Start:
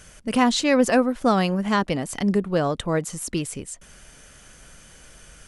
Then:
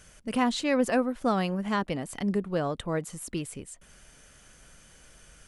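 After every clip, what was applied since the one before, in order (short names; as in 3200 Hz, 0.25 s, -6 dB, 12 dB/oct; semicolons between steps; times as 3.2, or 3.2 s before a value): dynamic EQ 5900 Hz, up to -5 dB, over -47 dBFS, Q 1.5; gain -6.5 dB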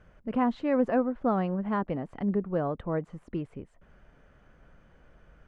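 LPF 1300 Hz 12 dB/oct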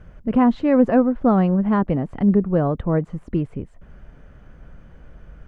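low shelf 270 Hz +9.5 dB; gain +6 dB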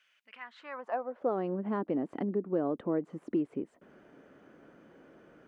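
compressor 3:1, threshold -26 dBFS, peak gain reduction 12 dB; high-pass sweep 2800 Hz -> 310 Hz, 0.2–1.49; gain -5.5 dB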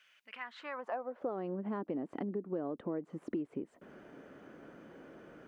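compressor 2.5:1, threshold -42 dBFS, peak gain reduction 11.5 dB; gain +3.5 dB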